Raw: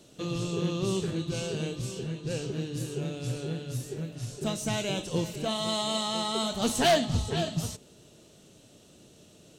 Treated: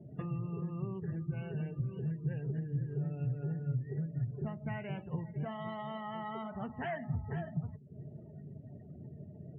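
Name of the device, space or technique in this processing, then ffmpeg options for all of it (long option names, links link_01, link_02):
bass amplifier: -af "acompressor=threshold=-45dB:ratio=6,highpass=73,equalizer=frequency=85:width_type=q:width=4:gain=8,equalizer=frequency=140:width_type=q:width=4:gain=10,equalizer=frequency=310:width_type=q:width=4:gain=-8,equalizer=frequency=510:width_type=q:width=4:gain=-8,equalizer=frequency=870:width_type=q:width=4:gain=3,equalizer=frequency=1900:width_type=q:width=4:gain=8,lowpass=frequency=2300:width=0.5412,lowpass=frequency=2300:width=1.3066,afftdn=noise_reduction=35:noise_floor=-55,volume=7dB"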